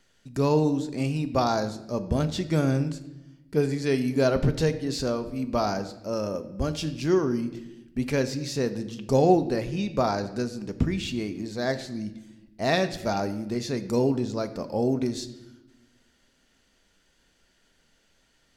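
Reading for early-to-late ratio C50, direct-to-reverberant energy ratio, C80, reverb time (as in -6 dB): 13.0 dB, 9.0 dB, 15.0 dB, 0.95 s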